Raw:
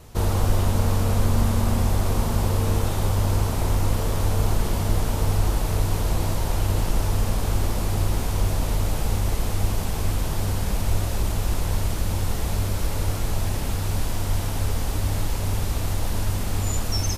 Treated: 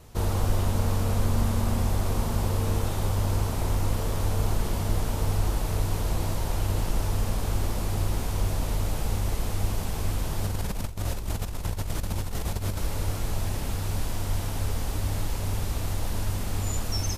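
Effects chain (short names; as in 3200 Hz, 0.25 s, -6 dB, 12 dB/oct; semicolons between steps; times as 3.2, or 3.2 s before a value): 10.44–12.79 negative-ratio compressor -24 dBFS, ratio -0.5; gain -4 dB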